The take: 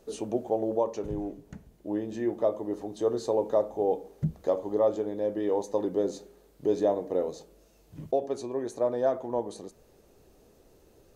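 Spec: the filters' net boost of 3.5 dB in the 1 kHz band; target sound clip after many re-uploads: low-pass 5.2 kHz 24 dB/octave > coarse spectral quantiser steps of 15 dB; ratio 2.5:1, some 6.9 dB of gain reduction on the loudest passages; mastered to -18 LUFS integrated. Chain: peaking EQ 1 kHz +5 dB; compression 2.5:1, threshold -29 dBFS; low-pass 5.2 kHz 24 dB/octave; coarse spectral quantiser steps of 15 dB; trim +16 dB

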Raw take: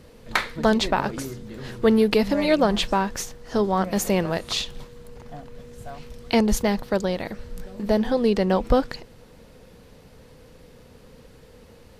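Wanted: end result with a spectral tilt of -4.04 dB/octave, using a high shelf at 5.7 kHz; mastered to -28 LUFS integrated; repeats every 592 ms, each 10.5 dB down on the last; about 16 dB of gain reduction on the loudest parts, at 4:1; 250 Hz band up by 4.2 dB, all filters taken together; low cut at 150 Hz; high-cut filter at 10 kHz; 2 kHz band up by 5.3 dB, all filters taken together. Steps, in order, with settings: high-pass 150 Hz; low-pass 10 kHz; peaking EQ 250 Hz +6 dB; peaking EQ 2 kHz +5.5 dB; treble shelf 5.7 kHz +8.5 dB; compression 4:1, threshold -31 dBFS; feedback delay 592 ms, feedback 30%, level -10.5 dB; trim +5.5 dB

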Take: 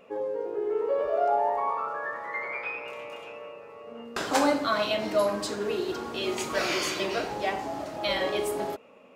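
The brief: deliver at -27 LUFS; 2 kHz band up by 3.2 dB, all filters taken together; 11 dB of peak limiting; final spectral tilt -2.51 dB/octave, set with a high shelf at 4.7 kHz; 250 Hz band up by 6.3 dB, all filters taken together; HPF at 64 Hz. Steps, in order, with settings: high-pass 64 Hz; peaking EQ 250 Hz +8 dB; peaking EQ 2 kHz +5 dB; treble shelf 4.7 kHz -6 dB; trim +2 dB; peak limiter -17.5 dBFS

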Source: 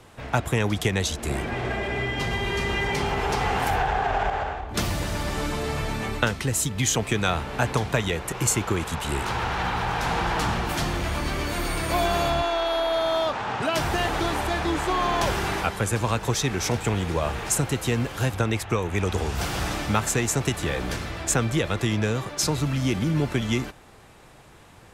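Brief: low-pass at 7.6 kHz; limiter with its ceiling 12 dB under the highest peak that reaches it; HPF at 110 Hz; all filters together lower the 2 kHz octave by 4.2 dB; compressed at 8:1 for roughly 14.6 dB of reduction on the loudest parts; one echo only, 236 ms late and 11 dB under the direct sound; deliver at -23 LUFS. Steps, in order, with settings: high-pass 110 Hz; low-pass 7.6 kHz; peaking EQ 2 kHz -5.5 dB; compression 8:1, threshold -36 dBFS; peak limiter -30.5 dBFS; delay 236 ms -11 dB; trim +17 dB

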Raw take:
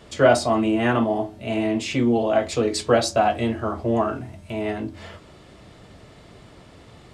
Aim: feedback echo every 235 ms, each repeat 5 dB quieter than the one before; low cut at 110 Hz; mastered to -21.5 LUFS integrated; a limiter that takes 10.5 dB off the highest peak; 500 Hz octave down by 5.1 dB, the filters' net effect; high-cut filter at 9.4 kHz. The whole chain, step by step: high-pass 110 Hz; low-pass 9.4 kHz; peaking EQ 500 Hz -7 dB; peak limiter -16.5 dBFS; feedback delay 235 ms, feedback 56%, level -5 dB; trim +4 dB

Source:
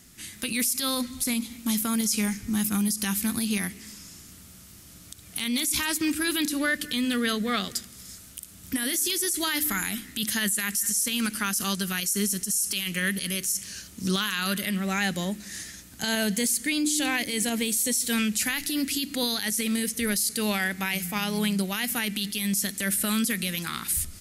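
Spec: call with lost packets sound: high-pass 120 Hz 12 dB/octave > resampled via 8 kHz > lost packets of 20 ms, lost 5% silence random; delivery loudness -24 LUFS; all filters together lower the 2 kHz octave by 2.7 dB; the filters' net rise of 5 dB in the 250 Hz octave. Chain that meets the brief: high-pass 120 Hz 12 dB/octave; peaking EQ 250 Hz +6.5 dB; peaking EQ 2 kHz -3.5 dB; resampled via 8 kHz; lost packets of 20 ms, lost 5% silence random; trim +2.5 dB

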